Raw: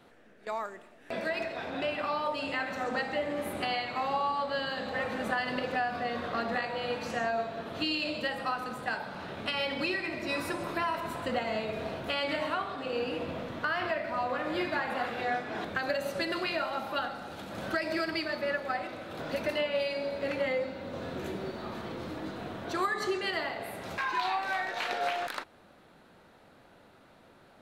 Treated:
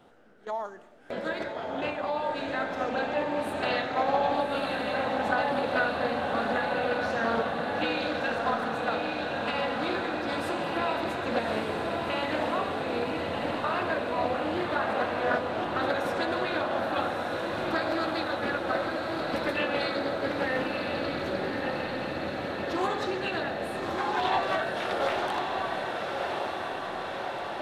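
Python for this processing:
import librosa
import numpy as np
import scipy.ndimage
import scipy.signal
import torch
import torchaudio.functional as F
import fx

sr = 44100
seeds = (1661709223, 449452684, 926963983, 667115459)

y = fx.graphic_eq_31(x, sr, hz=(800, 2500, 8000, 12500), db=(7, -6, -3, -4))
y = fx.formant_shift(y, sr, semitones=-2)
y = fx.echo_diffused(y, sr, ms=1199, feedback_pct=73, wet_db=-3.5)
y = fx.doppler_dist(y, sr, depth_ms=0.19)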